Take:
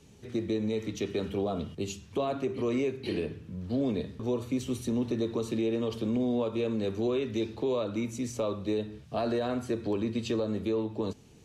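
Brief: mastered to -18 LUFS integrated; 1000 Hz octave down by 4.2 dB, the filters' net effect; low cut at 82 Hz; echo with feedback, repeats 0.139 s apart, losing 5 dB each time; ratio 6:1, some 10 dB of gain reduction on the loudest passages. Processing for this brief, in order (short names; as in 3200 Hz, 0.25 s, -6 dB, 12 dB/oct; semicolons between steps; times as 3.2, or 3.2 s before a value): HPF 82 Hz; bell 1000 Hz -6.5 dB; compressor 6:1, threshold -37 dBFS; feedback echo 0.139 s, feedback 56%, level -5 dB; gain +21.5 dB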